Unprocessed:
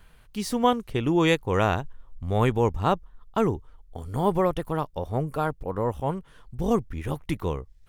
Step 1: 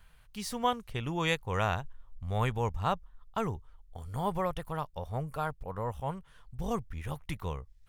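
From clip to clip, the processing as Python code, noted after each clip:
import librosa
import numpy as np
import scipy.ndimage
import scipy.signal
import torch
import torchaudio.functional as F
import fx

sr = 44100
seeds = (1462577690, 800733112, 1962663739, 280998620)

y = fx.peak_eq(x, sr, hz=320.0, db=-11.5, octaves=1.2)
y = F.gain(torch.from_numpy(y), -4.5).numpy()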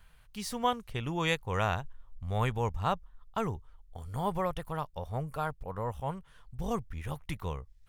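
y = x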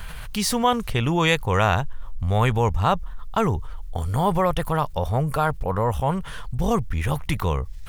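y = fx.env_flatten(x, sr, amount_pct=50)
y = F.gain(torch.from_numpy(y), 8.0).numpy()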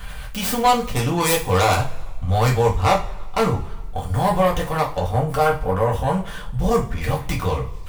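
y = fx.tracing_dist(x, sr, depth_ms=0.41)
y = fx.rev_double_slope(y, sr, seeds[0], early_s=0.29, late_s=1.5, knee_db=-21, drr_db=-3.0)
y = F.gain(torch.from_numpy(y), -2.5).numpy()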